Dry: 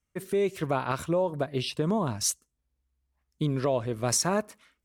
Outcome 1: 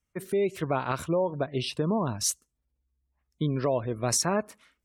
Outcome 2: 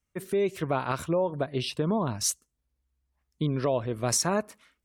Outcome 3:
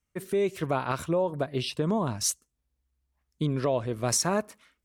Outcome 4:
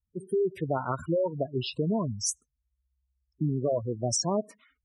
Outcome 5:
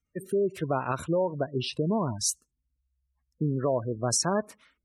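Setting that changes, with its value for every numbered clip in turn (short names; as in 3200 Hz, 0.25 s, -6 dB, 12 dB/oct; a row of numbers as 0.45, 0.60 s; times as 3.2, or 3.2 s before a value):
spectral gate, under each frame's peak: -35, -45, -60, -10, -20 dB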